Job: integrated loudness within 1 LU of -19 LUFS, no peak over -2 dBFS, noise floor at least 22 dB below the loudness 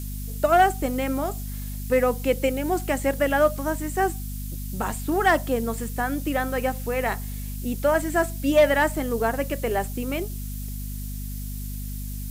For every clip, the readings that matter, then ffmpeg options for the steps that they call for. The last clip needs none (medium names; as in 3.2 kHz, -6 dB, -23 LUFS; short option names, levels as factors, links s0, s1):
hum 50 Hz; highest harmonic 250 Hz; hum level -30 dBFS; noise floor -32 dBFS; noise floor target -47 dBFS; loudness -25.0 LUFS; peak level -8.5 dBFS; loudness target -19.0 LUFS
-> -af "bandreject=f=50:t=h:w=6,bandreject=f=100:t=h:w=6,bandreject=f=150:t=h:w=6,bandreject=f=200:t=h:w=6,bandreject=f=250:t=h:w=6"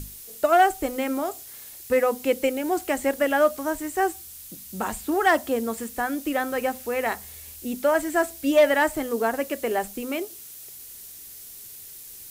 hum not found; noise floor -43 dBFS; noise floor target -47 dBFS
-> -af "afftdn=nr=6:nf=-43"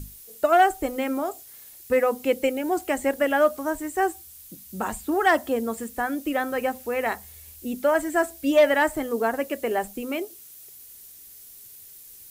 noise floor -47 dBFS; loudness -24.5 LUFS; peak level -9.5 dBFS; loudness target -19.0 LUFS
-> -af "volume=1.88"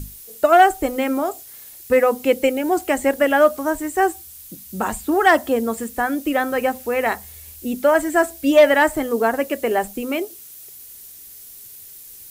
loudness -19.0 LUFS; peak level -4.0 dBFS; noise floor -41 dBFS